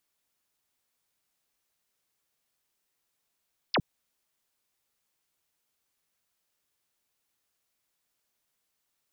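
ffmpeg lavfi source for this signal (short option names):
-f lavfi -i "aevalsrc='0.0794*clip(t/0.002,0,1)*clip((0.06-t)/0.002,0,1)*sin(2*PI*5600*0.06/log(100/5600)*(exp(log(100/5600)*t/0.06)-1))':d=0.06:s=44100"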